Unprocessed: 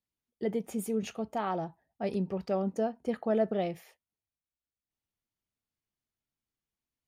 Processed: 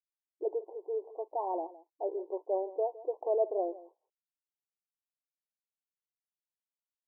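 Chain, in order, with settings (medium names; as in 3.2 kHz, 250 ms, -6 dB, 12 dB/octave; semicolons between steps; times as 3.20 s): hysteresis with a dead band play -56 dBFS; brick-wall FIR band-pass 310–1100 Hz; on a send: delay 162 ms -18 dB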